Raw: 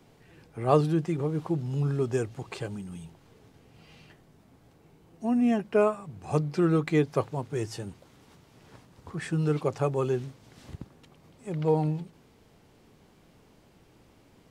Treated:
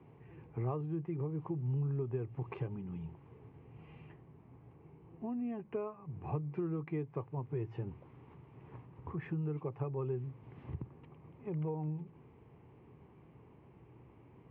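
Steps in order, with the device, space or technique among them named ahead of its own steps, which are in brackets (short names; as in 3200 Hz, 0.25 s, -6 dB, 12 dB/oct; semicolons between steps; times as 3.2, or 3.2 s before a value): bass amplifier (compressor 4:1, threshold -37 dBFS, peak gain reduction 18 dB; speaker cabinet 60–2100 Hz, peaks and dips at 81 Hz +10 dB, 120 Hz +6 dB, 240 Hz +4 dB, 1400 Hz -5 dB); ripple EQ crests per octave 0.71, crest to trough 7 dB; gain -2.5 dB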